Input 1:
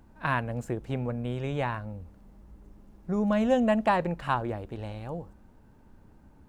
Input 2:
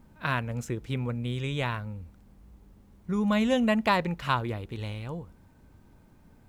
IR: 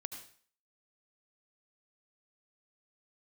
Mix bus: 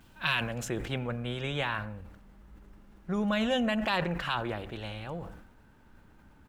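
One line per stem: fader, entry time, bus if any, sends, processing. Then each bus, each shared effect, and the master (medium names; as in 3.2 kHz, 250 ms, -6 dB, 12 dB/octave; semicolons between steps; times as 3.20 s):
-6.0 dB, 0.00 s, send -7 dB, peaking EQ 2.1 kHz +8 dB 1.6 oct; peak limiter -18 dBFS, peak gain reduction 9.5 dB
-6.5 dB, 5.2 ms, no send, resonant high shelf 2 kHz +13 dB, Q 3; auto duck -13 dB, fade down 1.05 s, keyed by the first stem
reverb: on, RT60 0.45 s, pre-delay 67 ms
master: peaking EQ 1.4 kHz +4.5 dB 0.58 oct; decay stretcher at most 61 dB/s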